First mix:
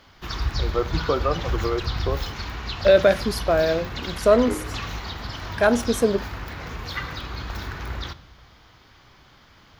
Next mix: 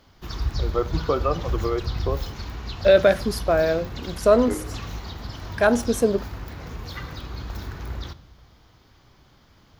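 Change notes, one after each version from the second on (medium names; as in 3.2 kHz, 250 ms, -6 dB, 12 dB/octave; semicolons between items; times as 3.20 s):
background: add peaking EQ 2 kHz -8 dB 2.8 oct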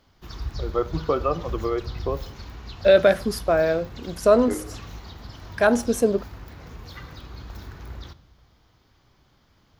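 background -5.5 dB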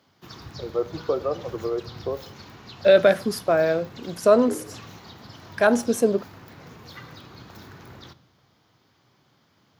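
first voice: add band-pass filter 500 Hz, Q 1.2; master: add high-pass 110 Hz 24 dB/octave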